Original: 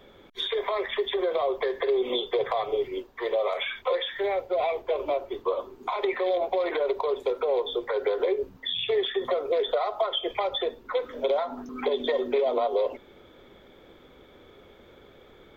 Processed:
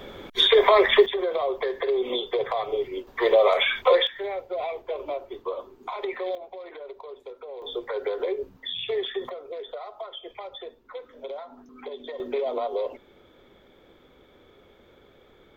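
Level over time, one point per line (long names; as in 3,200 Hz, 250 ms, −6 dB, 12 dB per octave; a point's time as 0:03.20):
+11.5 dB
from 0:01.06 0 dB
from 0:03.07 +8 dB
from 0:04.07 −4 dB
from 0:06.35 −14 dB
from 0:07.62 −2.5 dB
from 0:09.29 −11 dB
from 0:12.20 −3 dB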